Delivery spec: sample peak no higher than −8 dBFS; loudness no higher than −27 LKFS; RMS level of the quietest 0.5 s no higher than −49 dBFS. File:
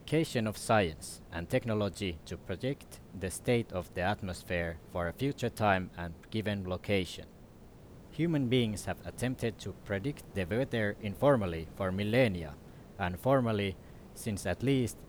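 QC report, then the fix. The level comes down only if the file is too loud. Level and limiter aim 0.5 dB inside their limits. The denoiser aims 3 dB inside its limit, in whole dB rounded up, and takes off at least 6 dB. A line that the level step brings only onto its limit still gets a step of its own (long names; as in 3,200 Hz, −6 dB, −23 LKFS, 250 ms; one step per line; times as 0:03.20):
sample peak −13.0 dBFS: in spec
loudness −33.0 LKFS: in spec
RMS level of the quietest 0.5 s −53 dBFS: in spec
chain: no processing needed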